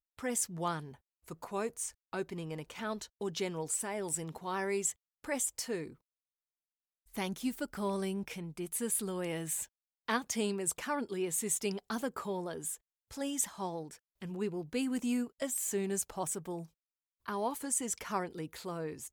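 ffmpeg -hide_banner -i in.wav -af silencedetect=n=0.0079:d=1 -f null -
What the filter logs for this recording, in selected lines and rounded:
silence_start: 5.90
silence_end: 7.14 | silence_duration: 1.24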